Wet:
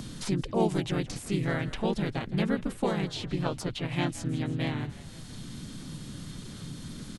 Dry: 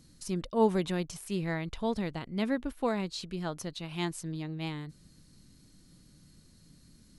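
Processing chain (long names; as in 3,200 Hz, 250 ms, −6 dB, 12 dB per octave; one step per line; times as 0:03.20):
de-essing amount 70%
pitch-shifted copies added −5 semitones −3 dB, −3 semitones −1 dB
echo with shifted repeats 164 ms, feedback 49%, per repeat −50 Hz, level −18.5 dB
multiband upward and downward compressor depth 70%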